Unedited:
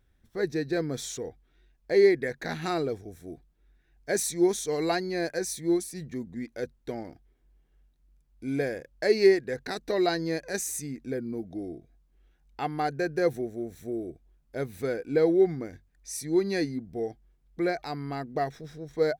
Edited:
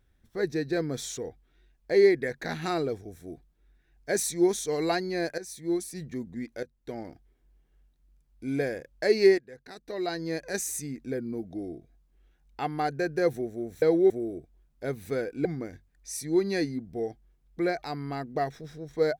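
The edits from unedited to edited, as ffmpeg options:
ffmpeg -i in.wav -filter_complex "[0:a]asplit=7[link_01][link_02][link_03][link_04][link_05][link_06][link_07];[link_01]atrim=end=5.38,asetpts=PTS-STARTPTS,afade=type=out:start_time=5.376:duration=0.004:curve=hsin:silence=0.237137[link_08];[link_02]atrim=start=5.38:end=6.63,asetpts=PTS-STARTPTS,afade=type=in:duration=0.57:silence=0.237137,afade=type=out:start_time=1.246:duration=0.004:curve=hsin:silence=0.16788[link_09];[link_03]atrim=start=6.63:end=9.38,asetpts=PTS-STARTPTS,afade=type=in:duration=0.42:silence=0.16788,afade=type=out:start_time=2.746:duration=0.004:curve=hsin:silence=0.177828[link_10];[link_04]atrim=start=9.38:end=13.822,asetpts=PTS-STARTPTS,afade=type=in:duration=1.08:curve=qua:silence=0.177828[link_11];[link_05]atrim=start=15.168:end=15.452[link_12];[link_06]atrim=start=13.818:end=15.172[link_13];[link_07]atrim=start=15.448[link_14];[link_08][link_09][link_10][link_11]concat=n=4:v=0:a=1[link_15];[link_15][link_12]acrossfade=duration=0.004:curve1=hsin:curve2=hsin[link_16];[link_16][link_13]acrossfade=duration=0.004:curve1=hsin:curve2=hsin[link_17];[link_17][link_14]acrossfade=duration=0.004:curve1=hsin:curve2=hsin" out.wav

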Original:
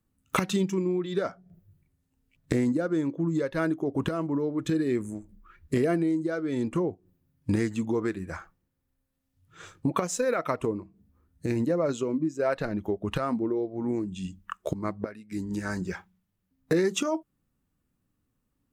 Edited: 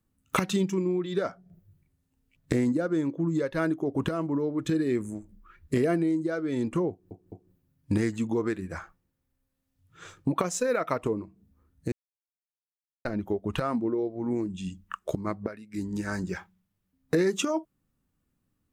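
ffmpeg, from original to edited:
ffmpeg -i in.wav -filter_complex "[0:a]asplit=5[link_01][link_02][link_03][link_04][link_05];[link_01]atrim=end=7.112[link_06];[link_02]atrim=start=6.898:end=7.112[link_07];[link_03]atrim=start=6.898:end=11.5,asetpts=PTS-STARTPTS,afade=type=out:start_time=4.598:duration=0.004:curve=hsin[link_08];[link_04]atrim=start=11.5:end=12.63,asetpts=PTS-STARTPTS,volume=0[link_09];[link_05]atrim=start=12.63,asetpts=PTS-STARTPTS,afade=type=in:duration=0.004:curve=hsin[link_10];[link_06][link_07]acrossfade=duration=0.004:curve1=hsin:curve2=hsin[link_11];[link_08][link_09][link_10]concat=n=3:v=0:a=1[link_12];[link_11][link_12]acrossfade=duration=0.004:curve1=hsin:curve2=hsin" out.wav

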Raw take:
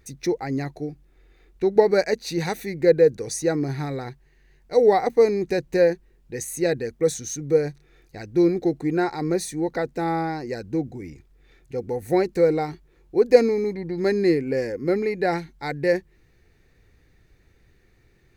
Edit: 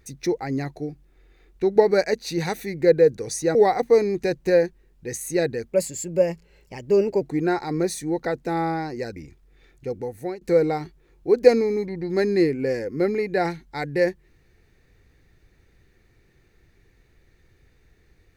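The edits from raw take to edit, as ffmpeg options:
ffmpeg -i in.wav -filter_complex "[0:a]asplit=6[link_01][link_02][link_03][link_04][link_05][link_06];[link_01]atrim=end=3.552[link_07];[link_02]atrim=start=4.818:end=7.004[link_08];[link_03]atrim=start=7:end=8.72,asetpts=PTS-STARTPTS,asetrate=51156,aresample=44100[link_09];[link_04]atrim=start=8.716:end=10.672[link_10];[link_05]atrim=start=11.038:end=12.29,asetpts=PTS-STARTPTS,afade=type=out:start_time=0.712:duration=0.54:silence=0.112202[link_11];[link_06]atrim=start=12.29,asetpts=PTS-STARTPTS,afade=type=in:duration=0.004:curve=hsin:silence=0.112202[link_12];[link_07][link_08]acrossfade=duration=0.004:curve1=hsin:curve2=hsin[link_13];[link_13][link_09]acrossfade=duration=0.004:curve1=hsin:curve2=hsin[link_14];[link_14][link_10]acrossfade=duration=0.004:curve1=hsin:curve2=hsin[link_15];[link_11][link_12]concat=n=2:v=0:a=1[link_16];[link_15][link_16]acrossfade=duration=0.004:curve1=hsin:curve2=hsin" out.wav

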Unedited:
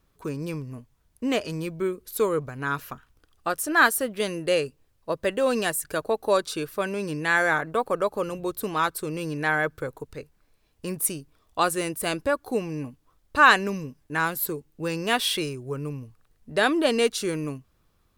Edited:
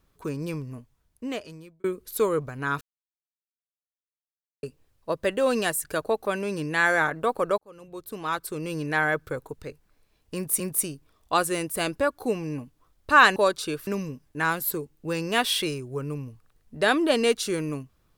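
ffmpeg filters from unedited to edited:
ffmpeg -i in.wav -filter_complex "[0:a]asplit=9[link_01][link_02][link_03][link_04][link_05][link_06][link_07][link_08][link_09];[link_01]atrim=end=1.84,asetpts=PTS-STARTPTS,afade=type=out:start_time=0.67:duration=1.17[link_10];[link_02]atrim=start=1.84:end=2.81,asetpts=PTS-STARTPTS,afade=type=in:duration=0.004:curve=hsin,afade=type=out:start_time=0.966:duration=0.004:curve=hsin[link_11];[link_03]atrim=start=2.81:end=4.63,asetpts=PTS-STARTPTS,volume=0[link_12];[link_04]atrim=start=4.63:end=6.252,asetpts=PTS-STARTPTS,afade=type=in:duration=0.004:curve=hsin[link_13];[link_05]atrim=start=6.758:end=8.09,asetpts=PTS-STARTPTS,afade=type=out:start_time=1.328:duration=0.004:curve=hsin[link_14];[link_06]atrim=start=8.09:end=11.112,asetpts=PTS-STARTPTS,afade=type=in:duration=1.21[link_15];[link_07]atrim=start=10.858:end=13.622[link_16];[link_08]atrim=start=6.248:end=6.762[link_17];[link_09]atrim=start=13.618[link_18];[link_10][link_11][link_12][link_13]concat=n=4:v=0:a=1[link_19];[link_14][link_15]concat=n=2:v=0:a=1[link_20];[link_19][link_20]acrossfade=duration=0.004:curve1=hsin:curve2=hsin[link_21];[link_21][link_16]acrossfade=duration=0.004:curve1=hsin:curve2=hsin[link_22];[link_22][link_17]acrossfade=duration=0.004:curve1=hsin:curve2=hsin[link_23];[link_23][link_18]acrossfade=duration=0.004:curve1=hsin:curve2=hsin" out.wav

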